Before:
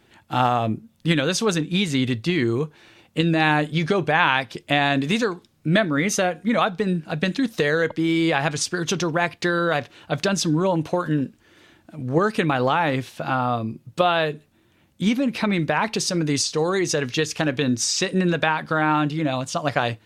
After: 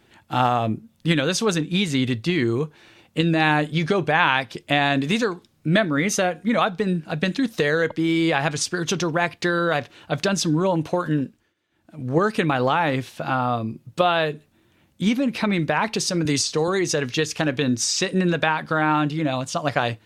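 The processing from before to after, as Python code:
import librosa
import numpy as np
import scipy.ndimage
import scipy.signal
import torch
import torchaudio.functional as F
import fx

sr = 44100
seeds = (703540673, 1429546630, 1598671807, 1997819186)

y = fx.band_squash(x, sr, depth_pct=40, at=(16.25, 16.68))
y = fx.edit(y, sr, fx.fade_down_up(start_s=11.18, length_s=0.88, db=-23.0, fade_s=0.36), tone=tone)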